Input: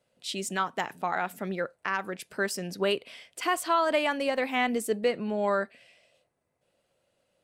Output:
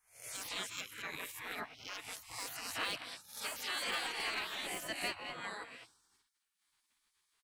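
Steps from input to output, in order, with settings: spectral swells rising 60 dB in 0.47 s; on a send: echo 0.211 s -14 dB; on the sum: spectral gate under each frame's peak -20 dB weak; in parallel at -8.5 dB: wavefolder -34.5 dBFS; on the sum: de-esser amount 80%; gain -1 dB

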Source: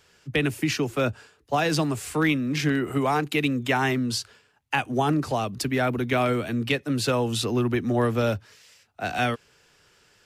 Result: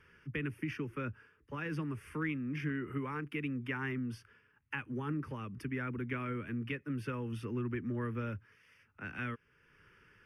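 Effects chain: compressor 1.5:1, threshold -54 dBFS, peak gain reduction 12.5 dB; running mean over 6 samples; fixed phaser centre 1700 Hz, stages 4; gain +1 dB

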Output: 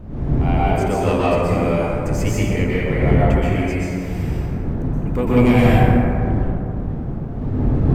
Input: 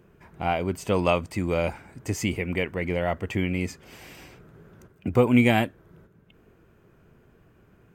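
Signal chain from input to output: wind noise 170 Hz -27 dBFS; soft clip -11.5 dBFS, distortion -18 dB; plate-style reverb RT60 2.6 s, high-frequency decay 0.35×, pre-delay 0.11 s, DRR -8.5 dB; gain -2 dB

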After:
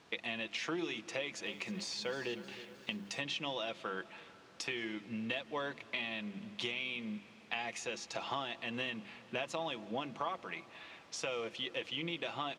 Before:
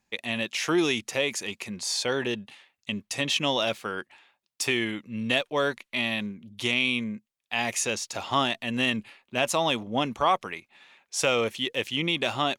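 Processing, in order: notches 50/100/150/200/250/300/350 Hz; comb 6 ms, depth 44%; compressor 6:1, threshold -37 dBFS, peak gain reduction 19 dB; added noise pink -60 dBFS; BPF 150–4700 Hz; reverb RT60 4.0 s, pre-delay 0.141 s, DRR 18.5 dB; 1.12–3.2 lo-fi delay 0.311 s, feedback 55%, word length 10-bit, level -14 dB; gain +1 dB

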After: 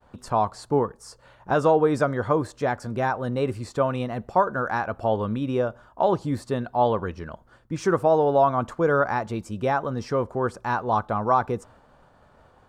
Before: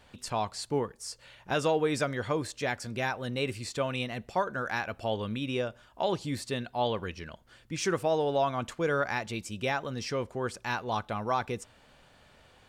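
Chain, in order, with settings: resonant high shelf 1700 Hz -11 dB, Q 1.5; expander -55 dBFS; gain +7 dB

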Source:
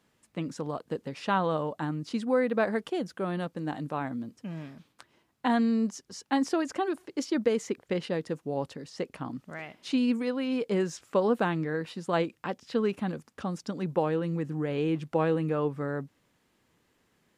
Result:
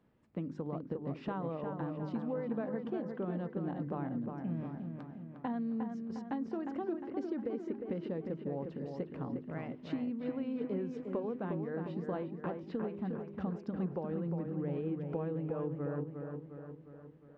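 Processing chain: tilt shelf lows +3.5 dB, about 670 Hz; de-hum 50.59 Hz, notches 8; compressor, threshold -34 dBFS, peak gain reduction 14.5 dB; tape spacing loss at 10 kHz 33 dB; dark delay 0.356 s, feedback 55%, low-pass 2800 Hz, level -5.5 dB

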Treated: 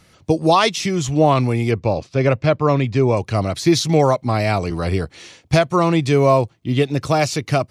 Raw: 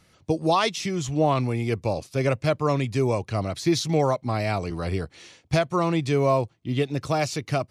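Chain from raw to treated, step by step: 1.71–3.17 air absorption 130 m; gain +7 dB

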